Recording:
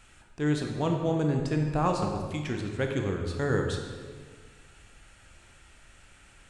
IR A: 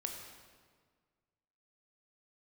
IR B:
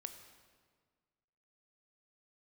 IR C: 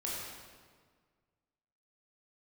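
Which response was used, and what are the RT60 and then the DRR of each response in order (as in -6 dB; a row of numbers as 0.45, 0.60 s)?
A; 1.7, 1.7, 1.7 s; 2.0, 7.5, -6.0 dB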